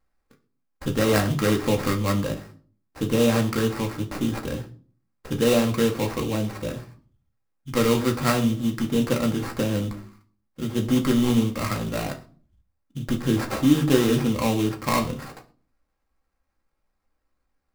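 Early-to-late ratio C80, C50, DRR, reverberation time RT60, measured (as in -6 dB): 18.5 dB, 15.0 dB, 1.5 dB, 0.40 s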